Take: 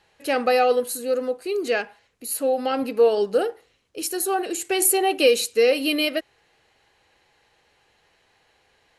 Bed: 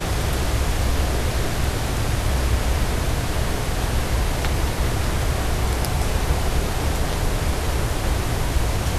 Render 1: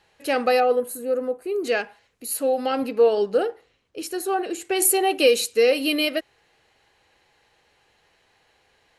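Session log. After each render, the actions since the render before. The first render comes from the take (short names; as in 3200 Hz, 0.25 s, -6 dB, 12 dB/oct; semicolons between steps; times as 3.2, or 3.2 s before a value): 0.6–1.64 bell 4500 Hz -14 dB 1.8 oct; 2.87–4.75 high shelf 8100 Hz -> 4600 Hz -10.5 dB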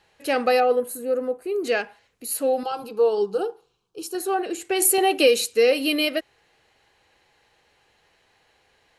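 2.63–4.15 fixed phaser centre 390 Hz, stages 8; 4.98–5.39 three-band squash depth 40%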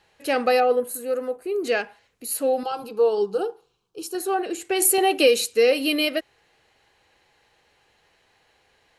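0.94–1.36 tilt shelf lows -5 dB, about 730 Hz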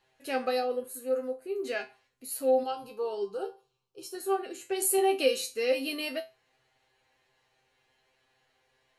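resonator 130 Hz, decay 0.24 s, harmonics all, mix 90%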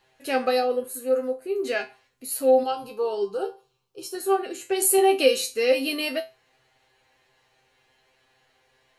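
gain +6.5 dB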